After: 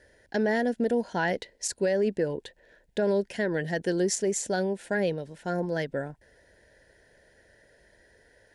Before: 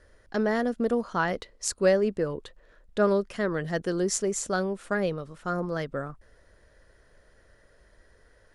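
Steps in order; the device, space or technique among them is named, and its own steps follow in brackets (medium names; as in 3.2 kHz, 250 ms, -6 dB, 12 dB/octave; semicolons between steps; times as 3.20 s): PA system with an anti-feedback notch (high-pass 130 Hz 6 dB/octave; Butterworth band-stop 1.2 kHz, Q 2.3; peak limiter -20 dBFS, peak gain reduction 11 dB); peaking EQ 1.8 kHz +3.5 dB 0.21 oct; trim +2 dB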